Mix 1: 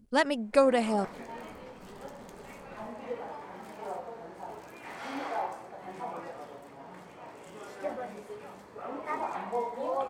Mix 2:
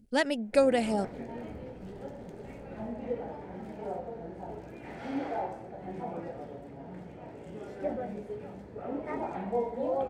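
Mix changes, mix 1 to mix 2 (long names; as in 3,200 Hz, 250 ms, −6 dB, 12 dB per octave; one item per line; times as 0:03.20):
background: add spectral tilt −3.5 dB per octave
master: add parametric band 1,100 Hz −12.5 dB 0.44 octaves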